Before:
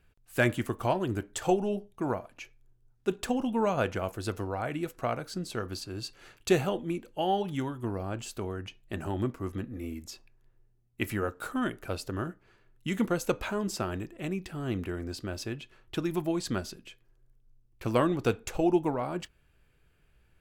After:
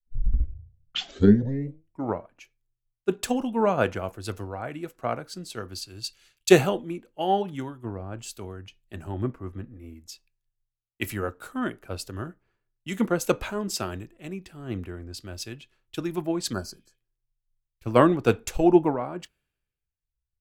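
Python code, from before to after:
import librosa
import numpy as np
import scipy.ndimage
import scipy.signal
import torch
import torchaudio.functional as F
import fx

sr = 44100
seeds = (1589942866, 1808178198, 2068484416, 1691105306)

y = fx.tape_start_head(x, sr, length_s=2.33)
y = fx.spec_repair(y, sr, seeds[0], start_s=16.55, length_s=0.37, low_hz=1800.0, high_hz=4000.0, source='after')
y = fx.band_widen(y, sr, depth_pct=100)
y = y * 10.0 ** (1.0 / 20.0)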